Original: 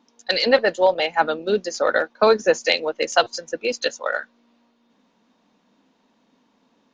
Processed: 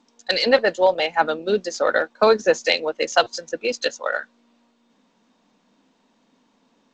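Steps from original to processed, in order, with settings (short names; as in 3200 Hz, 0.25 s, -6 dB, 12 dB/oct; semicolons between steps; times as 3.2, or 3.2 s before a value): G.722 64 kbps 16000 Hz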